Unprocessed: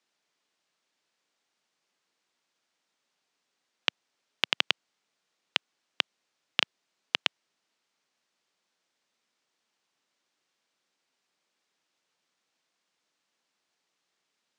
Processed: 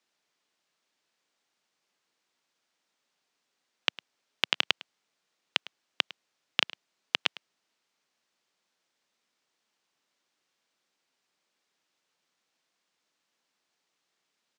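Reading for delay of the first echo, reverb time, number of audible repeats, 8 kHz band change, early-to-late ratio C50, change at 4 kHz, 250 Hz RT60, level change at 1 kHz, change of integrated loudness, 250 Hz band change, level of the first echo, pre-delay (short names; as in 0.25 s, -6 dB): 0.105 s, none, 1, 0.0 dB, none, 0.0 dB, none, 0.0 dB, 0.0 dB, 0.0 dB, -20.0 dB, none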